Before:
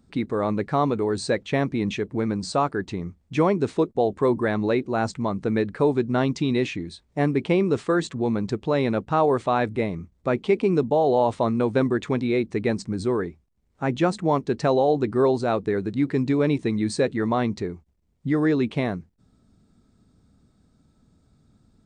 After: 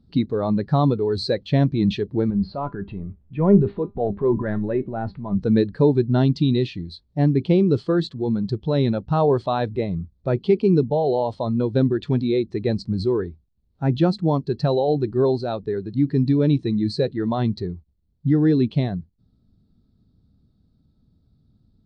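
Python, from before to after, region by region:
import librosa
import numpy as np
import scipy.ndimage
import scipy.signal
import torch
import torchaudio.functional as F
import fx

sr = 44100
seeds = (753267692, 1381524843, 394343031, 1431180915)

y = fx.chain(x, sr, fx.lowpass(hz=2500.0, slope=24),
    fx.transient(attack_db=-4, sustain_db=7),
    fx.comb_fb(f0_hz=200.0, decay_s=0.23, harmonics='all', damping=0.0, mix_pct=60), at=(2.3, 5.35))
y = fx.noise_reduce_blind(y, sr, reduce_db=8)
y = fx.curve_eq(y, sr, hz=(120.0, 2300.0, 4300.0, 6700.0), db=(0, -18, -3, -25))
y = fx.rider(y, sr, range_db=10, speed_s=2.0)
y = F.gain(torch.from_numpy(y), 9.0).numpy()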